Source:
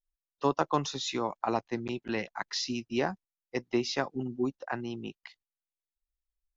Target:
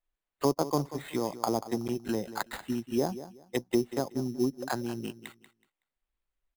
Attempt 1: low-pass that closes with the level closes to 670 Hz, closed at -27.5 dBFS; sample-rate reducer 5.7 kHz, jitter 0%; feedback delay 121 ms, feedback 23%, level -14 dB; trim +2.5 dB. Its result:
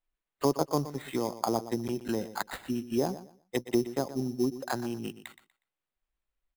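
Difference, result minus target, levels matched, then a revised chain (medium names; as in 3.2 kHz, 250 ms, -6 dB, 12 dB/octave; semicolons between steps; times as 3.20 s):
echo 66 ms early
low-pass that closes with the level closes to 670 Hz, closed at -27.5 dBFS; sample-rate reducer 5.7 kHz, jitter 0%; feedback delay 187 ms, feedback 23%, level -14 dB; trim +2.5 dB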